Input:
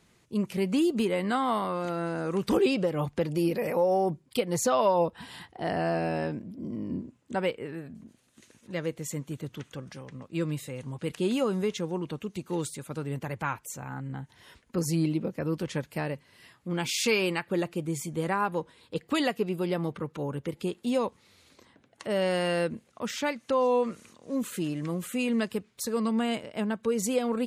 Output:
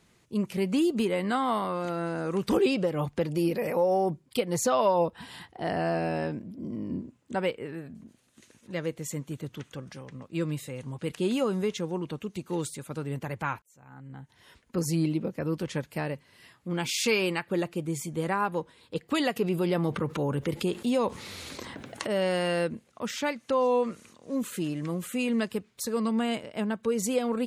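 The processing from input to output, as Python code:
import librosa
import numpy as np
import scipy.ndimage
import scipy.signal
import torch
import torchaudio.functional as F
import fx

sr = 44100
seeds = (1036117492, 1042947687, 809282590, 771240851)

y = fx.env_flatten(x, sr, amount_pct=50, at=(19.36, 22.07))
y = fx.edit(y, sr, fx.fade_in_span(start_s=13.62, length_s=1.15), tone=tone)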